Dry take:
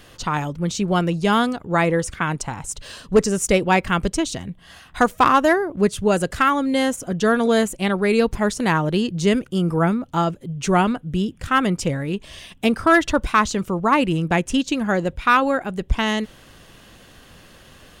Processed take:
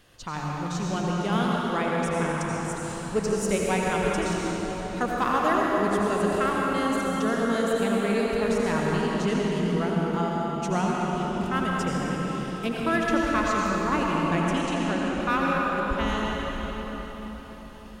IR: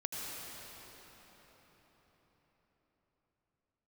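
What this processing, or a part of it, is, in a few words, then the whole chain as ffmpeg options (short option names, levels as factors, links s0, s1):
cathedral: -filter_complex "[1:a]atrim=start_sample=2205[s0];[0:a][s0]afir=irnorm=-1:irlink=0,asettb=1/sr,asplit=3[s1][s2][s3];[s1]atrim=end=14.614[s4];[s2]atrim=start=14.61:end=15.21,asetpts=PTS-STARTPTS,afade=t=in:d=0.004:c=qsin,afade=t=out:st=0.596:d=0.004:c=qsin,lowpass=f=11000:w=0.5412,lowpass=f=11000:w=1.3066[s5];[s3]atrim=start=15.206[s6];[s4][s5]acrossfade=d=0.004:c1=hsin:c2=qsin[s7];[s7][s6]acrossfade=d=0.004:c1=qsin:c2=hsin,volume=0.376"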